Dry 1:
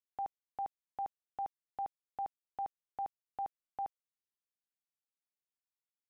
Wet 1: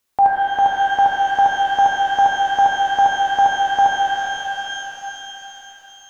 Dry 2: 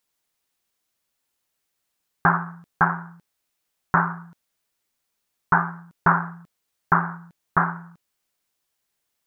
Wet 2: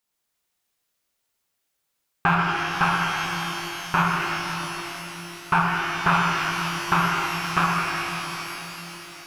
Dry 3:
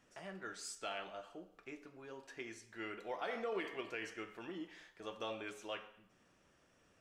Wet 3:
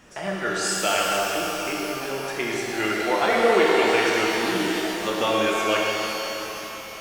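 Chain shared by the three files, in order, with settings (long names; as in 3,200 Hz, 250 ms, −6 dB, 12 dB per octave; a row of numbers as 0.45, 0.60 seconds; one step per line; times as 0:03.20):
loose part that buzzes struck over −26 dBFS, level −16 dBFS
reverb with rising layers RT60 3.9 s, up +12 semitones, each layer −8 dB, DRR −3 dB
normalise the peak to −6 dBFS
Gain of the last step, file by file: +21.5, −3.5, +18.0 decibels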